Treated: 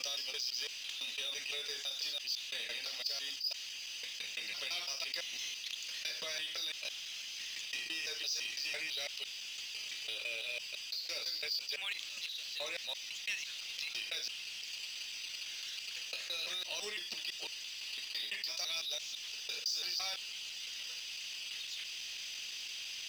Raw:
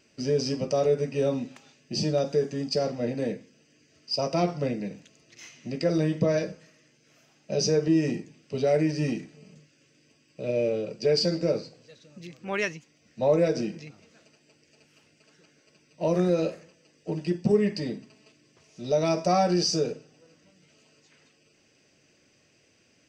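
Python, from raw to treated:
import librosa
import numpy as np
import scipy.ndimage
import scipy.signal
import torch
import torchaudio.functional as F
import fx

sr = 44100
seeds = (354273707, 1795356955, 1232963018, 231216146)

y = fx.block_reorder(x, sr, ms=168.0, group=5)
y = fx.transient(y, sr, attack_db=7, sustain_db=-5)
y = fx.ladder_bandpass(y, sr, hz=3800.0, resonance_pct=60)
y = fx.power_curve(y, sr, exponent=0.7)
y = fx.env_flatten(y, sr, amount_pct=70)
y = y * 10.0 ** (-6.5 / 20.0)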